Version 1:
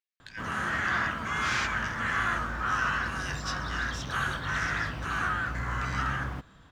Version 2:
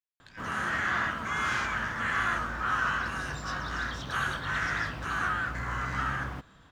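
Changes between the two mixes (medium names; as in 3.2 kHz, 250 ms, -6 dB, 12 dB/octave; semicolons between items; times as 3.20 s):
speech -7.5 dB; background: add bass shelf 210 Hz -3.5 dB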